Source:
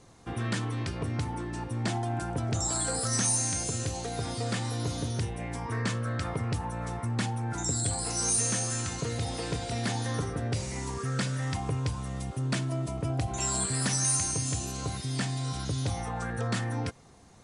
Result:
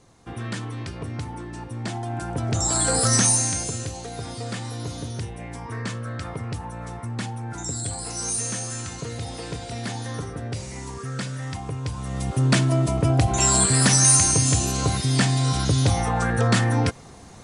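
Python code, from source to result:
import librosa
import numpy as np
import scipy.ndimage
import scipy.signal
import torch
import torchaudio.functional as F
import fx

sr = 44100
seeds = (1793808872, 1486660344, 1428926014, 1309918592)

y = fx.gain(x, sr, db=fx.line((1.92, 0.0), (3.06, 10.5), (3.96, 0.0), (11.8, 0.0), (12.39, 11.0)))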